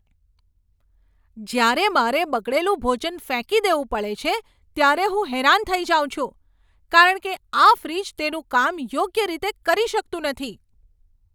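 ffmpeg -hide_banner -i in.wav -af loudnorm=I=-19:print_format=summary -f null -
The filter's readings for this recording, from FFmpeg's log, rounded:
Input Integrated:    -20.9 LUFS
Input True Peak:      -2.7 dBTP
Input LRA:             4.8 LU
Input Threshold:     -32.0 LUFS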